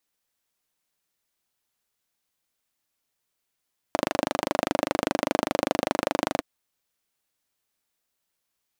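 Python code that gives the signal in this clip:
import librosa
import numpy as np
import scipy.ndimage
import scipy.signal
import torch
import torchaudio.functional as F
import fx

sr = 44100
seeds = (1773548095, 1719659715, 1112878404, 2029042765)

y = fx.engine_single(sr, seeds[0], length_s=2.47, rpm=3000, resonances_hz=(300.0, 570.0))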